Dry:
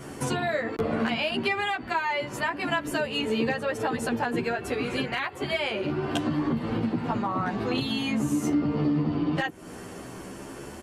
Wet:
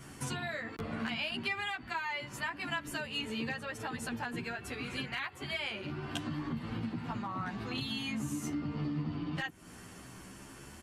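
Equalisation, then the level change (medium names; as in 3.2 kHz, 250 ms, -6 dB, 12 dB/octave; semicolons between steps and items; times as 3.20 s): peaking EQ 480 Hz -11 dB 1.8 oct; -5.5 dB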